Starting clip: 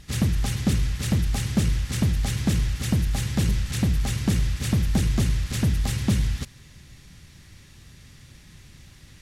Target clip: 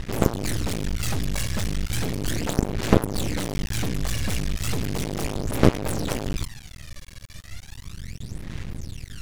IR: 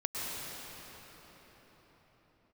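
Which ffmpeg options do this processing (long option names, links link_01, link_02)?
-af "aphaser=in_gain=1:out_gain=1:delay=1.8:decay=0.77:speed=0.35:type=sinusoidal,aeval=exprs='1.19*(cos(1*acos(clip(val(0)/1.19,-1,1)))-cos(1*PI/2))+0.237*(cos(4*acos(clip(val(0)/1.19,-1,1)))-cos(4*PI/2))+0.0473*(cos(5*acos(clip(val(0)/1.19,-1,1)))-cos(5*PI/2))+0.0335*(cos(7*acos(clip(val(0)/1.19,-1,1)))-cos(7*PI/2))+0.168*(cos(8*acos(clip(val(0)/1.19,-1,1)))-cos(8*PI/2))':channel_layout=same,aeval=exprs='max(val(0),0)':channel_layout=same,volume=7.5dB"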